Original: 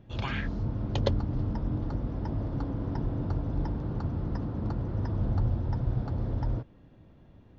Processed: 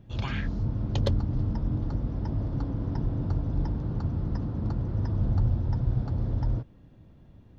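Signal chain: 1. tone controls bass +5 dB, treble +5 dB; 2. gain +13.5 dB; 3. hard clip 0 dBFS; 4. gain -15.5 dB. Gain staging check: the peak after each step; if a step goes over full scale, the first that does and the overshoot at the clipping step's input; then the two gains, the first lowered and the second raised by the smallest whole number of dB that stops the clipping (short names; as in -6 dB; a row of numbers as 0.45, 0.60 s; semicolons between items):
-9.5, +4.0, 0.0, -15.5 dBFS; step 2, 4.0 dB; step 2 +9.5 dB, step 4 -11.5 dB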